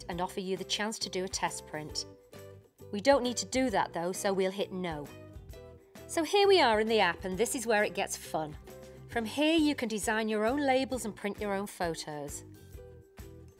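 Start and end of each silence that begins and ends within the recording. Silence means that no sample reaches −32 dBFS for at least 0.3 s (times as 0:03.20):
0:02.01–0:02.94
0:05.02–0:06.11
0:08.46–0:09.13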